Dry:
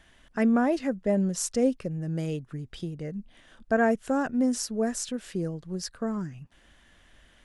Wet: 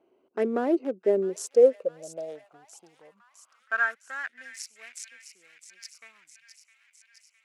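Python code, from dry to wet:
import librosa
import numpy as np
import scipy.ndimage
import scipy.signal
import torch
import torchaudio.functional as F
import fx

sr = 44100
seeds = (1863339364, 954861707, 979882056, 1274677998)

y = fx.wiener(x, sr, points=25)
y = fx.echo_wet_highpass(y, sr, ms=659, feedback_pct=65, hz=2100.0, wet_db=-10)
y = fx.filter_sweep_highpass(y, sr, from_hz=380.0, to_hz=2200.0, start_s=1.21, end_s=4.69, q=6.4)
y = y * librosa.db_to_amplitude(-4.5)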